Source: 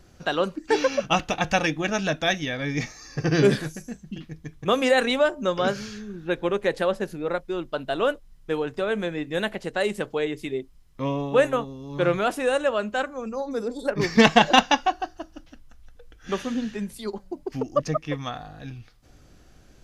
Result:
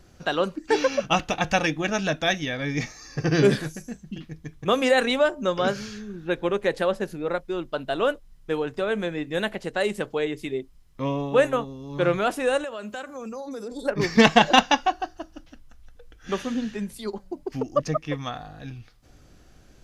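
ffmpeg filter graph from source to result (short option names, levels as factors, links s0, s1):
-filter_complex "[0:a]asettb=1/sr,asplit=3[s0][s1][s2];[s0]atrim=end=12.644[s3];[s1]atrim=start=12.64:end=13.72,asetpts=PTS-STARTPTS,afade=t=in:d=0.004:c=qsin,afade=t=out:st=1.076:d=0.004:c=qsin,highpass=75,aemphasis=mode=production:type=cd,acompressor=threshold=0.0282:ratio=5:attack=3.2:release=140:knee=1:detection=peak[s4];[s2]atrim=start=13.716[s5];[s3][s4]acrossfade=d=0.004:c1=hsin:c2=qsin[s6];[s6][s5]acrossfade=d=0.004:c1=qsin:c2=hsin"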